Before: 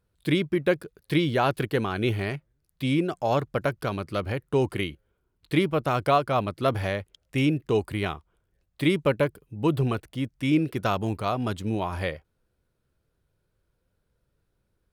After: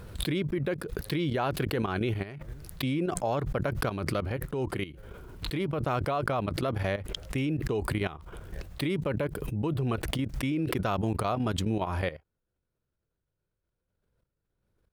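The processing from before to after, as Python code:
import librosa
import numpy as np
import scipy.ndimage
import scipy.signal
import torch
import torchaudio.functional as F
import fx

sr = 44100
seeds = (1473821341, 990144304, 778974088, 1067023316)

y = fx.high_shelf(x, sr, hz=3100.0, db=-5.0)
y = fx.level_steps(y, sr, step_db=14)
y = fx.transient(y, sr, attack_db=-5, sustain_db=-1, at=(4.2, 5.8))
y = fx.pre_swell(y, sr, db_per_s=28.0)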